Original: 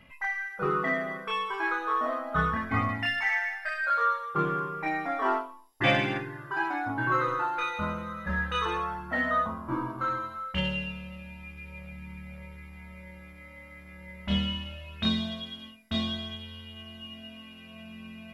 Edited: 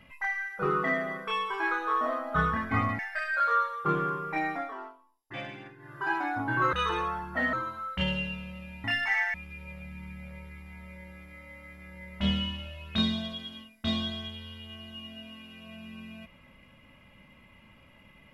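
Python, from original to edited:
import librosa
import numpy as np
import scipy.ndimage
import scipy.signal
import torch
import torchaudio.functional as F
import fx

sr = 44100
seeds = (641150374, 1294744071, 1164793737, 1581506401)

y = fx.edit(x, sr, fx.move(start_s=2.99, length_s=0.5, to_s=11.41),
    fx.fade_down_up(start_s=5.01, length_s=1.52, db=-15.5, fade_s=0.25),
    fx.cut(start_s=7.23, length_s=1.26),
    fx.cut(start_s=9.29, length_s=0.81), tone=tone)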